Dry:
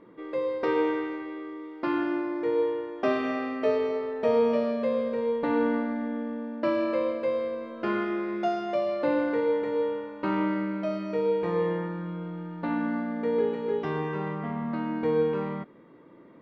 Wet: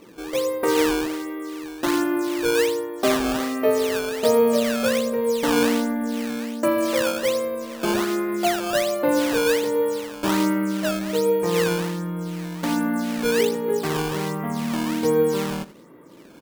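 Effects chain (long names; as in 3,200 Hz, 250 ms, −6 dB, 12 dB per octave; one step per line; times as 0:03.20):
sample-and-hold swept by an LFO 13×, swing 160% 1.3 Hz
single-tap delay 81 ms −18 dB
level +5.5 dB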